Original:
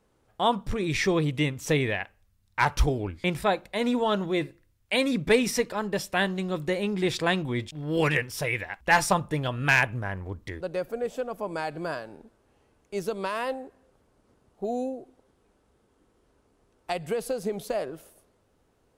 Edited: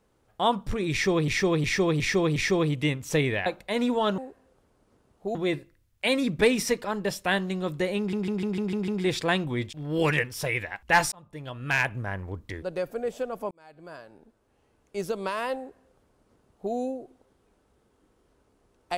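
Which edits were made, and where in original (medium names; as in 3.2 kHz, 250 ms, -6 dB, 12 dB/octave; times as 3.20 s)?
0.92–1.28 s: loop, 5 plays
2.02–3.51 s: delete
6.86 s: stutter 0.15 s, 7 plays
9.10–10.10 s: fade in
11.49–12.98 s: fade in
13.55–14.72 s: copy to 4.23 s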